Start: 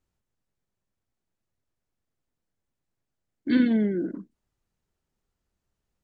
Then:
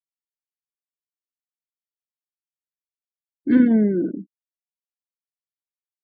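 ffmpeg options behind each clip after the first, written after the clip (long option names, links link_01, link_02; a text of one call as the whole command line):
ffmpeg -i in.wav -af "afftfilt=real='re*gte(hypot(re,im),0.0112)':imag='im*gte(hypot(re,im),0.0112)':win_size=1024:overlap=0.75,lowpass=1400,volume=6dB" out.wav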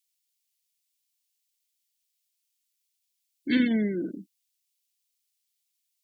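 ffmpeg -i in.wav -af "aexciter=amount=10.7:drive=7.1:freq=2000,volume=-8.5dB" out.wav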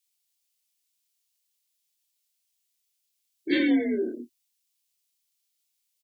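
ffmpeg -i in.wav -filter_complex "[0:a]asplit=2[link_01][link_02];[link_02]adelay=26,volume=-2dB[link_03];[link_01][link_03]amix=inputs=2:normalize=0,afreqshift=48" out.wav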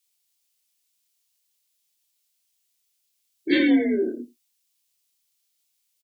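ffmpeg -i in.wav -af "aecho=1:1:82:0.0841,volume=4dB" out.wav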